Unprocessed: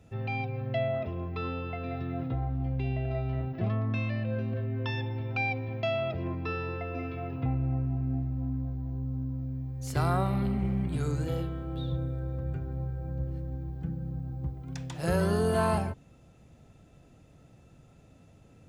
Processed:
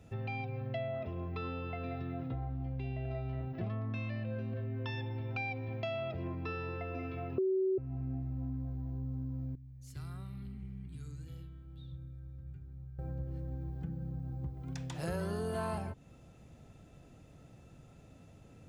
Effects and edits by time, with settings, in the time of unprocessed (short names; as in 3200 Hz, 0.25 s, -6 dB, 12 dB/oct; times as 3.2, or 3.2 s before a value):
7.38–7.78 bleep 379 Hz -13 dBFS
9.55–12.99 passive tone stack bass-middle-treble 6-0-2
whole clip: compressor 2.5:1, threshold -38 dBFS